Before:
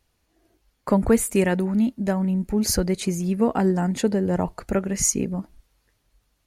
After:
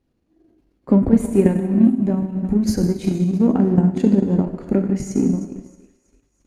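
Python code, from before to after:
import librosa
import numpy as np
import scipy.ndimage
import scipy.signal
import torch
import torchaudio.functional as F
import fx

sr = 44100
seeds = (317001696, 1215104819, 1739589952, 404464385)

p1 = x + fx.echo_thinned(x, sr, ms=323, feedback_pct=51, hz=870.0, wet_db=-16.5, dry=0)
p2 = fx.chopper(p1, sr, hz=4.5, depth_pct=65, duty_pct=90)
p3 = fx.peak_eq(p2, sr, hz=280.0, db=15.0, octaves=1.4)
p4 = fx.transient(p3, sr, attack_db=-4, sustain_db=8)
p5 = fx.low_shelf(p4, sr, hz=490.0, db=6.0)
p6 = 10.0 ** (-16.0 / 20.0) * np.tanh(p5 / 10.0 ** (-16.0 / 20.0))
p7 = p5 + (p6 * 10.0 ** (-9.5 / 20.0))
p8 = fx.lowpass(p7, sr, hz=3800.0, slope=6)
p9 = fx.rev_gated(p8, sr, seeds[0], gate_ms=450, shape='falling', drr_db=4.0)
p10 = fx.transient(p9, sr, attack_db=6, sustain_db=-5)
y = p10 * 10.0 ** (-12.5 / 20.0)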